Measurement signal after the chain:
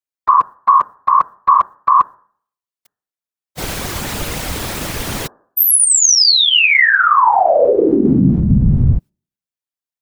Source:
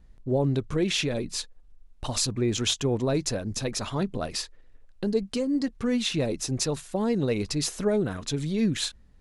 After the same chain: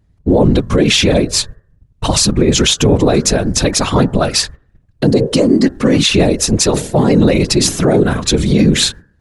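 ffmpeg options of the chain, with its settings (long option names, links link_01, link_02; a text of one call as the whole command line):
ffmpeg -i in.wav -af "agate=range=-18dB:threshold=-43dB:ratio=16:detection=peak,bandreject=frequency=150.3:width_type=h:width=4,bandreject=frequency=300.6:width_type=h:width=4,bandreject=frequency=450.9:width_type=h:width=4,bandreject=frequency=601.2:width_type=h:width=4,bandreject=frequency=751.5:width_type=h:width=4,bandreject=frequency=901.8:width_type=h:width=4,bandreject=frequency=1052.1:width_type=h:width=4,bandreject=frequency=1202.4:width_type=h:width=4,bandreject=frequency=1352.7:width_type=h:width=4,bandreject=frequency=1503:width_type=h:width=4,bandreject=frequency=1653.3:width_type=h:width=4,bandreject=frequency=1803.6:width_type=h:width=4,afftfilt=real='hypot(re,im)*cos(2*PI*random(0))':imag='hypot(re,im)*sin(2*PI*random(1))':win_size=512:overlap=0.75,alimiter=level_in=24.5dB:limit=-1dB:release=50:level=0:latency=1,volume=-1dB" out.wav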